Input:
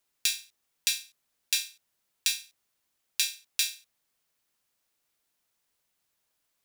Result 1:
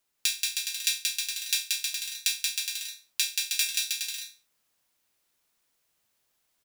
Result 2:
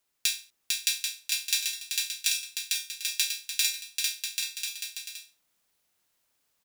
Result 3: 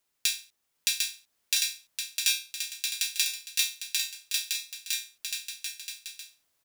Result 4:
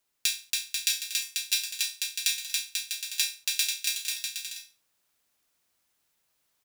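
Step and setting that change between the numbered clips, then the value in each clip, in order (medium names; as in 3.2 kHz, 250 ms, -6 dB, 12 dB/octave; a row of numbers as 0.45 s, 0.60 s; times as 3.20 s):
bouncing-ball echo, first gap: 180 ms, 450 ms, 750 ms, 280 ms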